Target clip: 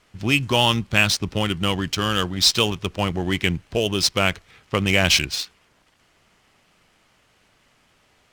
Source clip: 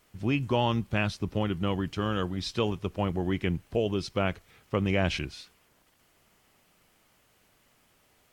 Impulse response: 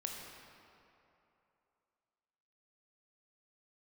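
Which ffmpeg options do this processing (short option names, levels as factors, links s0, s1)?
-af "bass=f=250:g=2,treble=f=4000:g=3,crystalizer=i=9:c=0,adynamicsmooth=sensitivity=5:basefreq=2000,volume=1.41"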